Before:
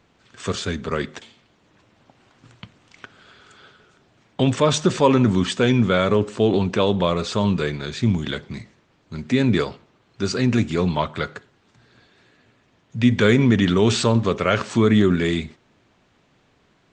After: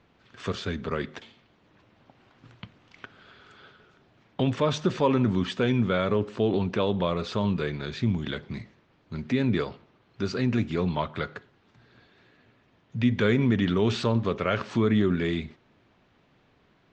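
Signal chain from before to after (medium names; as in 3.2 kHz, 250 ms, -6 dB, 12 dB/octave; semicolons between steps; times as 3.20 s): treble shelf 5.5 kHz +9 dB; in parallel at 0 dB: compression, threshold -27 dBFS, peak gain reduction 15.5 dB; on the sum: distance through air 210 m; trim -8 dB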